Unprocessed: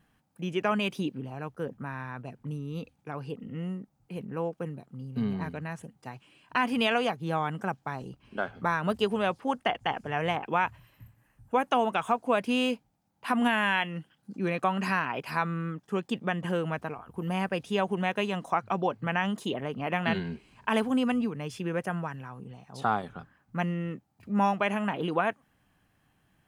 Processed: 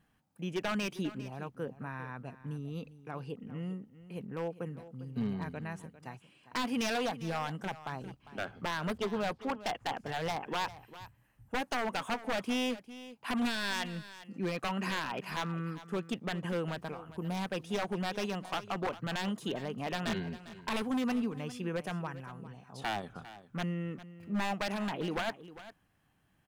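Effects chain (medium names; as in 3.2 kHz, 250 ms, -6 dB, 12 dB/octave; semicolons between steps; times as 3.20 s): 8.98–9.65 s: low-pass 2.9 kHz 12 dB/octave; wavefolder -22.5 dBFS; delay 401 ms -15.5 dB; trim -4 dB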